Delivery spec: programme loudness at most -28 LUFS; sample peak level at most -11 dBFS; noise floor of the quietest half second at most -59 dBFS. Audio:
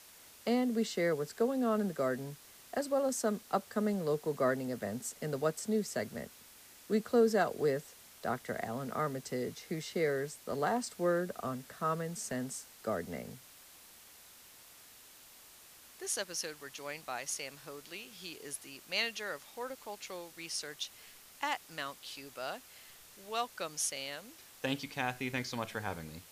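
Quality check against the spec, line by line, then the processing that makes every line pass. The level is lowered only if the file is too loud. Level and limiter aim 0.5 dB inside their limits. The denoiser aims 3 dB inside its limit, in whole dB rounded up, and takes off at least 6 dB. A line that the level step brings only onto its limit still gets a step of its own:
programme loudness -36.0 LUFS: OK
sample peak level -17.0 dBFS: OK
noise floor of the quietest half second -57 dBFS: fail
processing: denoiser 6 dB, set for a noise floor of -57 dBFS

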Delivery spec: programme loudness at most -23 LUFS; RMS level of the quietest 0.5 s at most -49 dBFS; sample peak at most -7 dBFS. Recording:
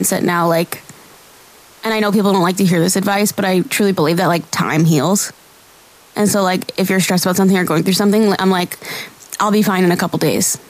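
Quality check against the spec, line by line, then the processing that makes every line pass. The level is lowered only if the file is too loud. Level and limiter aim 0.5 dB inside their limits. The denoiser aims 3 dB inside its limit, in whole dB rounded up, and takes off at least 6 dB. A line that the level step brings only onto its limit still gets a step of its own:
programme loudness -15.0 LUFS: fail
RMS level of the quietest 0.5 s -45 dBFS: fail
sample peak -5.0 dBFS: fail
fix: gain -8.5 dB

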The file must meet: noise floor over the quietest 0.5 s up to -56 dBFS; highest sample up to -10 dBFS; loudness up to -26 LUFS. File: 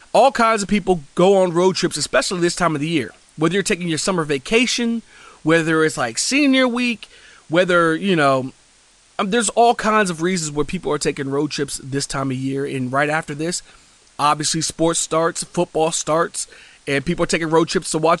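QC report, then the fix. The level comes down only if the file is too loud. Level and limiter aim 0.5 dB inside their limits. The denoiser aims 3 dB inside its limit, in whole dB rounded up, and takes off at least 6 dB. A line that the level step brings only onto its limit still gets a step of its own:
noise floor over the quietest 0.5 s -53 dBFS: fail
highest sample -4.0 dBFS: fail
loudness -18.5 LUFS: fail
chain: gain -8 dB

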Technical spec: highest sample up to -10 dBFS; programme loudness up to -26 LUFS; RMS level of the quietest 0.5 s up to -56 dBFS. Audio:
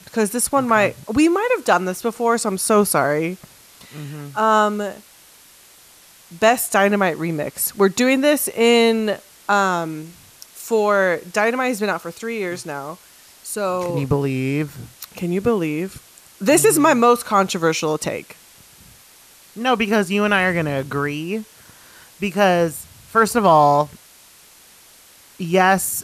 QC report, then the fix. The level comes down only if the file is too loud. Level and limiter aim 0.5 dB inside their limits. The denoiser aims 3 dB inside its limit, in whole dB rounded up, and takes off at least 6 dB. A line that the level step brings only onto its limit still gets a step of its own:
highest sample -3.5 dBFS: fail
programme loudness -18.5 LUFS: fail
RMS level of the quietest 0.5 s -48 dBFS: fail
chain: denoiser 6 dB, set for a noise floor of -48 dBFS; gain -8 dB

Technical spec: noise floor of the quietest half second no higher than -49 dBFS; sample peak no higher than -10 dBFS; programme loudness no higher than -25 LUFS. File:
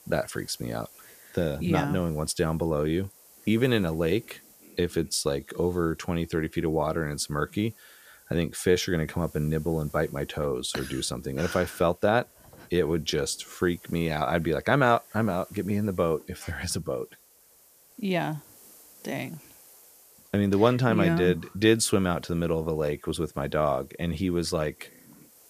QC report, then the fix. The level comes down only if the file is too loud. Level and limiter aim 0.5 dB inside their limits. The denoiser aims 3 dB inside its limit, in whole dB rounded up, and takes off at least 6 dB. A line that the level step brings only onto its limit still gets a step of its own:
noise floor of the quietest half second -58 dBFS: OK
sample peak -5.0 dBFS: fail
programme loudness -27.5 LUFS: OK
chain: limiter -10.5 dBFS

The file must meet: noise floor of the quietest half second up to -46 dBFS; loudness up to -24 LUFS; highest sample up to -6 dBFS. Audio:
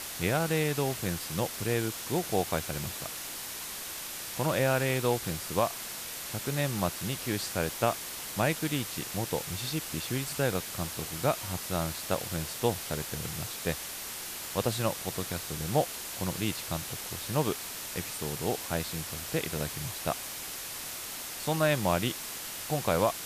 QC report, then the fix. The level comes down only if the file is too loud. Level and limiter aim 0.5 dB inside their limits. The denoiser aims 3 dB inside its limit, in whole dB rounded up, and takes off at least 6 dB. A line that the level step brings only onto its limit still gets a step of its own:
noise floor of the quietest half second -39 dBFS: fail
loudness -31.5 LUFS: OK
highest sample -13.0 dBFS: OK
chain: denoiser 10 dB, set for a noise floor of -39 dBFS

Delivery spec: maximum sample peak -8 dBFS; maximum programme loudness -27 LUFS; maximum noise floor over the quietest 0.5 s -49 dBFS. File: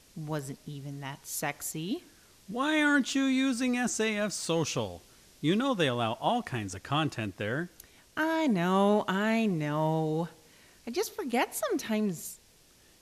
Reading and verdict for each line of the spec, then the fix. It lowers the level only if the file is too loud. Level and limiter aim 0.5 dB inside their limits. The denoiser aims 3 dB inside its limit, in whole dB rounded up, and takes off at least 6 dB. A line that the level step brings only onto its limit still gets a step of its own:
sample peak -14.0 dBFS: OK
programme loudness -30.0 LUFS: OK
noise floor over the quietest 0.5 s -61 dBFS: OK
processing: none

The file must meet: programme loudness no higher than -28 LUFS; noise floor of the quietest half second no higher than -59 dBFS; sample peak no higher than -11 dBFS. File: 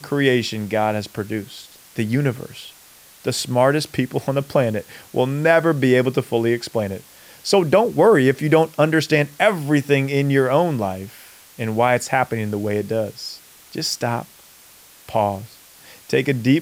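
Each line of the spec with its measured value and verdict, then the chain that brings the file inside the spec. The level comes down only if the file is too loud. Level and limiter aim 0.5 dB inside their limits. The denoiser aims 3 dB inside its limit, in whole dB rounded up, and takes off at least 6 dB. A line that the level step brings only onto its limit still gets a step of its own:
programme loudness -19.5 LUFS: fail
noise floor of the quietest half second -47 dBFS: fail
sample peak -4.0 dBFS: fail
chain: denoiser 6 dB, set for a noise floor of -47 dBFS; gain -9 dB

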